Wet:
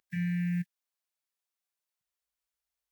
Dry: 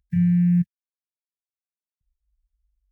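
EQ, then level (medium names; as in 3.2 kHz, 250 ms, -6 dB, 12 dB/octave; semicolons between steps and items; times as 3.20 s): high-pass 490 Hz 12 dB/octave; +5.5 dB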